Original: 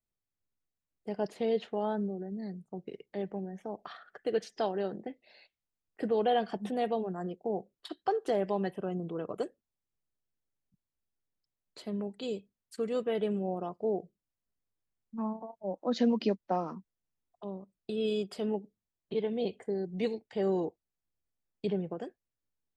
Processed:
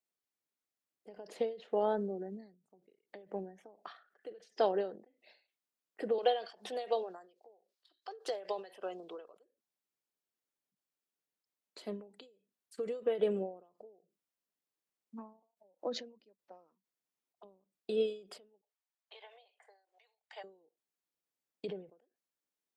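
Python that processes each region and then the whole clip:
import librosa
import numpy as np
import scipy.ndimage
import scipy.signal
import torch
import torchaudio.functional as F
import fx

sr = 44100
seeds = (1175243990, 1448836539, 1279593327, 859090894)

y = fx.chain(x, sr, fx.highpass(hz=520.0, slope=12),
    fx.peak_eq(hz=4500.0, db=10.5, octaves=1.0), at=(6.18, 9.4))
y = fx.chain(y, sr, fx.steep_highpass(hz=690.0, slope=36),
    fx.high_shelf(hz=5200.0, db=-7.5), at=(18.61, 20.44))
y = scipy.signal.sosfilt(scipy.signal.butter(2, 270.0, 'highpass', fs=sr, output='sos'), y)
y = fx.dynamic_eq(y, sr, hz=500.0, q=2.7, threshold_db=-45.0, ratio=4.0, max_db=7)
y = fx.end_taper(y, sr, db_per_s=130.0)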